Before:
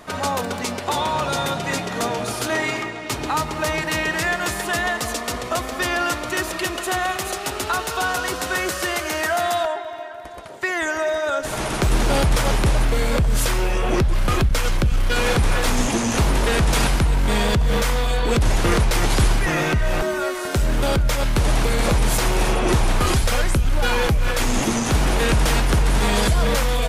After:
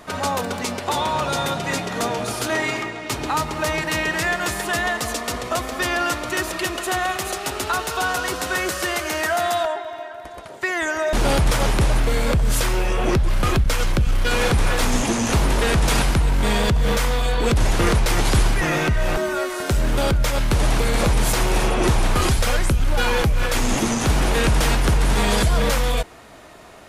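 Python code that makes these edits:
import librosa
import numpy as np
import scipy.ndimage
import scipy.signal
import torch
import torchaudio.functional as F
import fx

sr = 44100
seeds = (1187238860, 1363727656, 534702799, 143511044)

y = fx.edit(x, sr, fx.cut(start_s=11.13, length_s=0.85), tone=tone)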